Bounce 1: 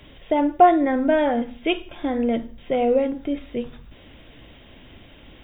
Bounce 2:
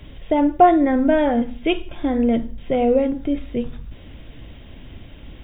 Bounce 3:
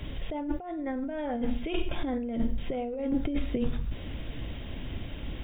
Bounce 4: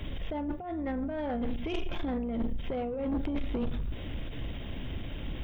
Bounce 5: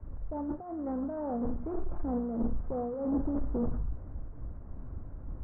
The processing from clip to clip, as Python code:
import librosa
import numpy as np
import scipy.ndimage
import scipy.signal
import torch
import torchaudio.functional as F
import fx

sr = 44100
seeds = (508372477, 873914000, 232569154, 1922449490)

y1 = fx.low_shelf(x, sr, hz=210.0, db=11.0)
y2 = fx.over_compress(y1, sr, threshold_db=-26.0, ratio=-1.0)
y2 = y2 * librosa.db_to_amplitude(-4.0)
y3 = fx.octave_divider(y2, sr, octaves=2, level_db=-6.0)
y3 = 10.0 ** (-27.0 / 20.0) * np.tanh(y3 / 10.0 ** (-27.0 / 20.0))
y3 = fx.end_taper(y3, sr, db_per_s=140.0)
y3 = y3 * librosa.db_to_amplitude(1.0)
y4 = fx.delta_mod(y3, sr, bps=16000, step_db=-43.0)
y4 = scipy.signal.sosfilt(scipy.signal.butter(6, 1300.0, 'lowpass', fs=sr, output='sos'), y4)
y4 = fx.band_widen(y4, sr, depth_pct=100)